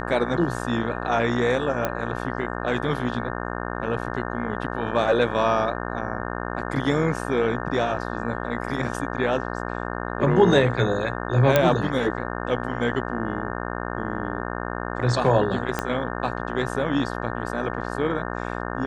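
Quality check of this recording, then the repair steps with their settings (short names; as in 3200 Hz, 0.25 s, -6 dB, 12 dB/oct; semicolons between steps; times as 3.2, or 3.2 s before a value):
buzz 60 Hz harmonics 30 -30 dBFS
1.85 pop -10 dBFS
11.56 pop -4 dBFS
15.79 pop -9 dBFS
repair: de-click; de-hum 60 Hz, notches 30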